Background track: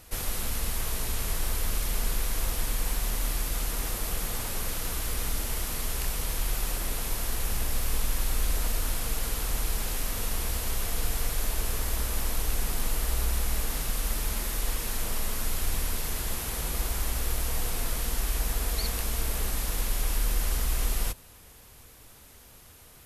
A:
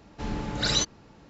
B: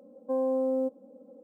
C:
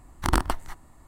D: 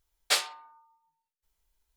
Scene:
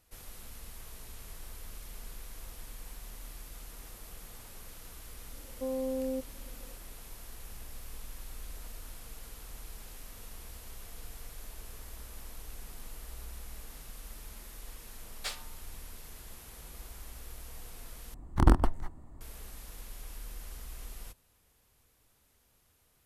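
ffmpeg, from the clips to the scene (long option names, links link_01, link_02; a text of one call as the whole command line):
ffmpeg -i bed.wav -i cue0.wav -i cue1.wav -i cue2.wav -i cue3.wav -filter_complex "[0:a]volume=-17dB[link_01];[2:a]tiltshelf=frequency=890:gain=7.5[link_02];[3:a]tiltshelf=frequency=930:gain=8[link_03];[link_01]asplit=2[link_04][link_05];[link_04]atrim=end=18.144[link_06];[link_03]atrim=end=1.07,asetpts=PTS-STARTPTS,volume=-4.5dB[link_07];[link_05]atrim=start=19.206[link_08];[link_02]atrim=end=1.43,asetpts=PTS-STARTPTS,volume=-10.5dB,afade=type=in:duration=0.004:curve=hsin,afade=type=out:start_time=1.426:duration=0.004:curve=hsin,adelay=5320[link_09];[4:a]atrim=end=1.96,asetpts=PTS-STARTPTS,volume=-13dB,afade=type=in:duration=0.004:curve=hsin,afade=type=out:start_time=1.956:duration=0.004:curve=hsin,adelay=14940[link_10];[link_06][link_07]acrossfade=duration=0.004:curve1=hsin:curve2=hsin[link_11];[link_11][link_08]acrossfade=duration=0.004:curve1=hsin:curve2=hsin[link_12];[link_12][link_09][link_10]amix=inputs=3:normalize=0" out.wav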